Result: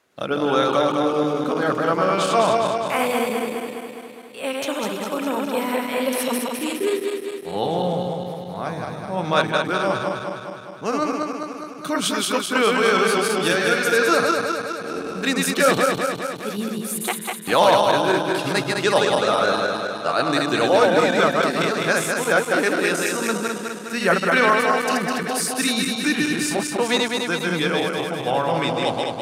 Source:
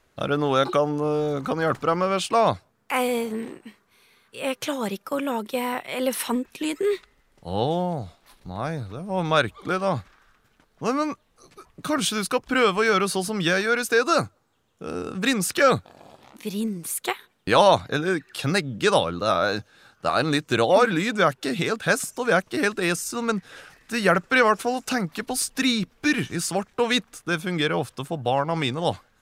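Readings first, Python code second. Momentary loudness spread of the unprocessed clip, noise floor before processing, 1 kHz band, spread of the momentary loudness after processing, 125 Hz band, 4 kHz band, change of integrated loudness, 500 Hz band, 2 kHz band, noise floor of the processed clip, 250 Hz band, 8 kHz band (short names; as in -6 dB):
11 LU, -65 dBFS, +3.5 dB, 11 LU, -1.0 dB, +3.5 dB, +3.0 dB, +3.5 dB, +3.5 dB, -34 dBFS, +2.5 dB, +3.5 dB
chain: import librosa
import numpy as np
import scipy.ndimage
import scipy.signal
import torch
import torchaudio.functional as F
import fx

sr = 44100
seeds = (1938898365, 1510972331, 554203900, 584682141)

y = fx.reverse_delay_fb(x, sr, ms=103, feedback_pct=78, wet_db=-2.5)
y = np.clip(10.0 ** (7.5 / 20.0) * y, -1.0, 1.0) / 10.0 ** (7.5 / 20.0)
y = scipy.signal.sosfilt(scipy.signal.butter(2, 180.0, 'highpass', fs=sr, output='sos'), y)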